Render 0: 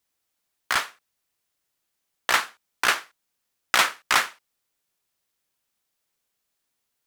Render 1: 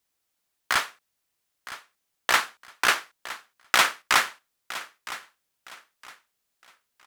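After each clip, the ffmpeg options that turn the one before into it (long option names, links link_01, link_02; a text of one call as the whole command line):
ffmpeg -i in.wav -af "aecho=1:1:963|1926|2889:0.168|0.0487|0.0141" out.wav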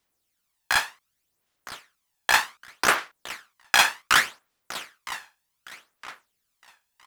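ffmpeg -i in.wav -af "aphaser=in_gain=1:out_gain=1:delay=1.2:decay=0.54:speed=0.66:type=sinusoidal" out.wav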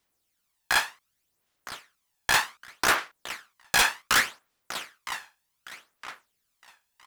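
ffmpeg -i in.wav -af "aeval=exprs='0.211*(abs(mod(val(0)/0.211+3,4)-2)-1)':channel_layout=same" out.wav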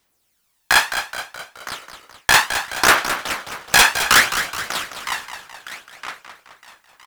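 ffmpeg -i in.wav -filter_complex "[0:a]asplit=7[link_01][link_02][link_03][link_04][link_05][link_06][link_07];[link_02]adelay=212,afreqshift=-64,volume=-9.5dB[link_08];[link_03]adelay=424,afreqshift=-128,volume=-15dB[link_09];[link_04]adelay=636,afreqshift=-192,volume=-20.5dB[link_10];[link_05]adelay=848,afreqshift=-256,volume=-26dB[link_11];[link_06]adelay=1060,afreqshift=-320,volume=-31.6dB[link_12];[link_07]adelay=1272,afreqshift=-384,volume=-37.1dB[link_13];[link_01][link_08][link_09][link_10][link_11][link_12][link_13]amix=inputs=7:normalize=0,volume=9dB" out.wav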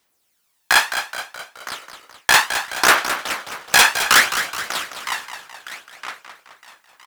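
ffmpeg -i in.wav -af "lowshelf=frequency=140:gain=-10.5" out.wav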